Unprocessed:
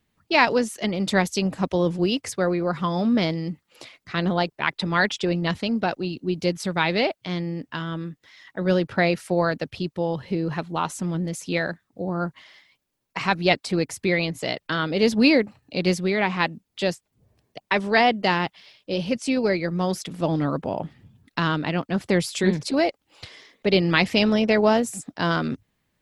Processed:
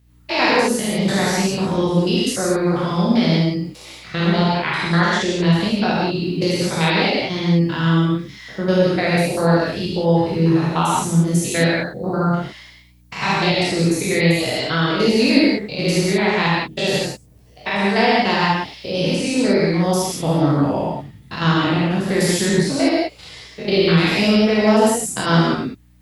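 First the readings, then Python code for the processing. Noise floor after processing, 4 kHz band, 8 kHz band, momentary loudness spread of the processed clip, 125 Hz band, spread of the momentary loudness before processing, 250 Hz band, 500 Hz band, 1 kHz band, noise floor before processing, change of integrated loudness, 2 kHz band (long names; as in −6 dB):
−46 dBFS, +6.5 dB, +10.5 dB, 9 LU, +9.0 dB, 11 LU, +6.5 dB, +5.0 dB, +5.0 dB, −77 dBFS, +5.5 dB, +4.0 dB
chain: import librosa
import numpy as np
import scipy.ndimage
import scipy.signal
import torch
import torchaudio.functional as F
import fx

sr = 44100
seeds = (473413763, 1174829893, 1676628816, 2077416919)

p1 = fx.spec_steps(x, sr, hold_ms=100)
p2 = fx.high_shelf(p1, sr, hz=5100.0, db=9.5)
p3 = fx.rider(p2, sr, range_db=10, speed_s=0.5)
p4 = p2 + F.gain(torch.from_numpy(p3), 1.5).numpy()
p5 = fx.add_hum(p4, sr, base_hz=60, snr_db=32)
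p6 = fx.rev_gated(p5, sr, seeds[0], gate_ms=210, shape='flat', drr_db=-5.0)
y = F.gain(torch.from_numpy(p6), -5.5).numpy()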